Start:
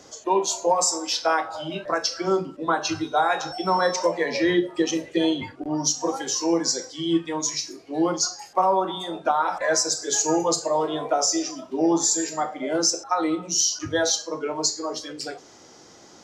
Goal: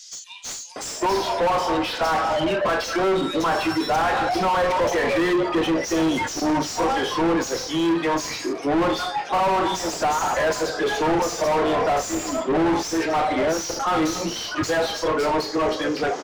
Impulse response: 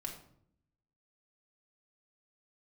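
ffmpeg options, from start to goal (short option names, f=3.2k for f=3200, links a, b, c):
-filter_complex "[0:a]acrossover=split=3800[a][b];[a]adelay=760[c];[c][b]amix=inputs=2:normalize=0,asplit=2[d][e];[e]highpass=f=720:p=1,volume=37dB,asoftclip=type=tanh:threshold=-7dB[f];[d][f]amix=inputs=2:normalize=0,lowpass=f=1.3k:p=1,volume=-6dB,volume=-5.5dB"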